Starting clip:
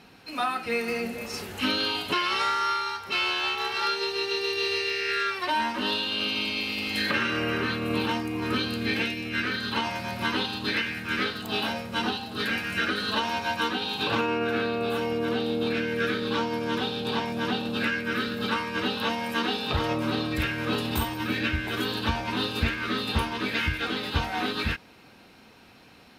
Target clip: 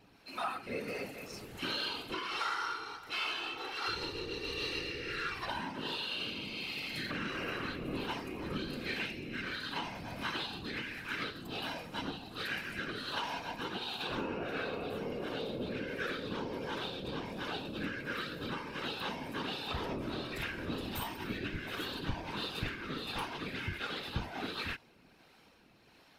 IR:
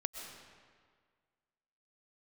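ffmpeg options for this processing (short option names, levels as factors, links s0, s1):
-filter_complex "[0:a]acrossover=split=470[s0][s1];[s0]aeval=exprs='val(0)*(1-0.5/2+0.5/2*cos(2*PI*1.4*n/s))':c=same[s2];[s1]aeval=exprs='val(0)*(1-0.5/2-0.5/2*cos(2*PI*1.4*n/s))':c=same[s3];[s2][s3]amix=inputs=2:normalize=0,asettb=1/sr,asplit=3[s4][s5][s6];[s4]atrim=end=3.884[s7];[s5]atrim=start=3.88:end=5.6,asetpts=PTS-STARTPTS,afade=t=in:d=0.004:c=qsin,afade=t=out:st=1.716:d=0.004:c=qsin,aeval=exprs='val(0)+0.01*(sin(2*PI*60*n/s)+sin(2*PI*2*60*n/s)/2+sin(2*PI*3*60*n/s)/3+sin(2*PI*4*60*n/s)/4+sin(2*PI*5*60*n/s)/5)':c=same[s8];[s6]atrim=start=5.596[s9];[s7][s8]acrossfade=d=0.004:c1=hsin:c2=qsin[s10];[s10][s9]acrossfade=d=0.004:c1=qsin:c2=hsin,asplit=2[s11][s12];[s12]asoftclip=type=tanh:threshold=0.0266,volume=0.376[s13];[s11][s13]amix=inputs=2:normalize=0,afftfilt=real='hypot(re,im)*cos(2*PI*random(0))':imag='hypot(re,im)*sin(2*PI*random(1))':win_size=512:overlap=0.75,volume=0.631"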